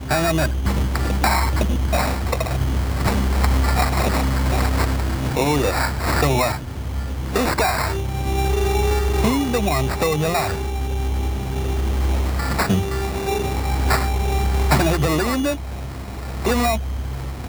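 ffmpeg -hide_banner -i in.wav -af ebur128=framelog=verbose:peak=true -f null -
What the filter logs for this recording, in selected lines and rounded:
Integrated loudness:
  I:         -20.9 LUFS
  Threshold: -31.0 LUFS
Loudness range:
  LRA:         1.9 LU
  Threshold: -40.9 LUFS
  LRA low:   -22.0 LUFS
  LRA high:  -20.1 LUFS
True peak:
  Peak:       -4.4 dBFS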